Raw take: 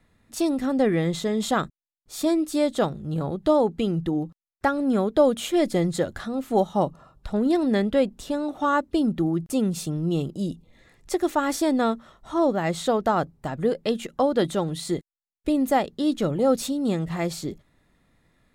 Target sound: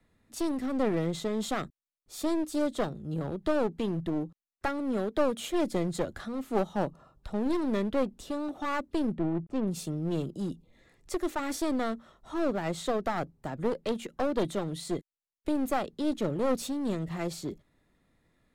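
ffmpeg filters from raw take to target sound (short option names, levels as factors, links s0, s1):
-filter_complex "[0:a]asettb=1/sr,asplit=3[s0][s1][s2];[s0]atrim=end=4.794[s3];[s1]atrim=start=4.79:end=5.39,asetpts=PTS-STARTPTS,afade=t=in:d=0.004:c=qsin,afade=t=out:st=0.596:d=0.004:c=qsin,lowshelf=f=150:g=-10[s4];[s2]atrim=start=5.386[s5];[s3][s4]acrossfade=d=0.004:c1=hsin:c2=qsin[s6];[s6][s5]acrossfade=d=0.004:c1=qsin:c2=hsin,acrossover=split=300|460|2200[s7][s8][s9][s10];[s8]acontrast=28[s11];[s7][s11][s9][s10]amix=inputs=4:normalize=0,aeval=exprs='clip(val(0),-1,0.0562)':c=same,asplit=3[s12][s13][s14];[s12]afade=t=out:st=9.14:d=0.02[s15];[s13]adynamicsmooth=sensitivity=2:basefreq=1200,afade=t=in:st=9.14:d=0.02,afade=t=out:st=9.66:d=0.02[s16];[s14]afade=t=in:st=9.66:d=0.02[s17];[s15][s16][s17]amix=inputs=3:normalize=0,volume=0.473"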